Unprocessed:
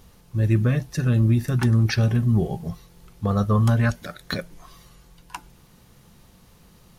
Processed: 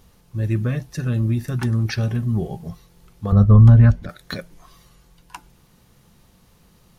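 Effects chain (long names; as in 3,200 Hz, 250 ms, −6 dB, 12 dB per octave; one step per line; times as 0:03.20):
0:03.32–0:04.09: RIAA equalisation playback
level −2 dB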